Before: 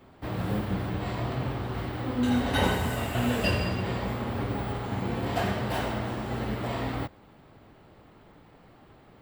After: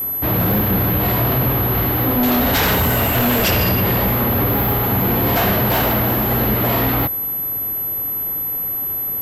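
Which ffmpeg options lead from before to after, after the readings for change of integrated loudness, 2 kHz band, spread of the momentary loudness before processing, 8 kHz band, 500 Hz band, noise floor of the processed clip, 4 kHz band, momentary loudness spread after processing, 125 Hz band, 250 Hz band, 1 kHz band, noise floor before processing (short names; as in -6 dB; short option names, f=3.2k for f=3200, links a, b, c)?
+13.0 dB, +11.5 dB, 7 LU, +14.0 dB, +11.5 dB, -23 dBFS, +11.5 dB, 5 LU, +11.5 dB, +10.5 dB, +11.5 dB, -55 dBFS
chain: -af "aeval=exprs='0.282*sin(PI/2*4.47*val(0)/0.282)':c=same,acontrast=71,aeval=exprs='val(0)+0.251*sin(2*PI*12000*n/s)':c=same,volume=-8dB"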